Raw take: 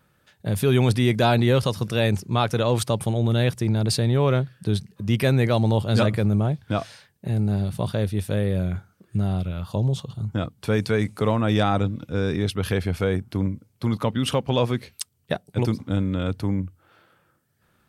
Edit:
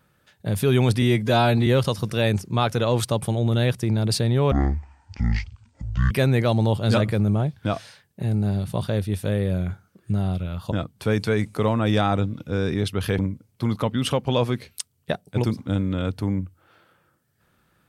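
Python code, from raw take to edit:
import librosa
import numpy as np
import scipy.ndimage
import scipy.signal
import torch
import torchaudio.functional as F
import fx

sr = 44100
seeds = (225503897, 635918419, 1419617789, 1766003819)

y = fx.edit(x, sr, fx.stretch_span(start_s=1.02, length_s=0.43, factor=1.5),
    fx.speed_span(start_s=4.3, length_s=0.86, speed=0.54),
    fx.cut(start_s=9.77, length_s=0.57),
    fx.cut(start_s=12.81, length_s=0.59), tone=tone)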